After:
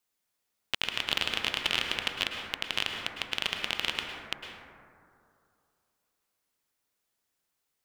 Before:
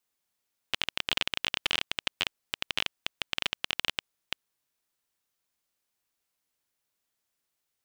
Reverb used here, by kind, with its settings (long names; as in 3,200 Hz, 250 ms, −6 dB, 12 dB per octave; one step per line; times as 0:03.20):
dense smooth reverb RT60 2.5 s, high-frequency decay 0.25×, pre-delay 95 ms, DRR 2 dB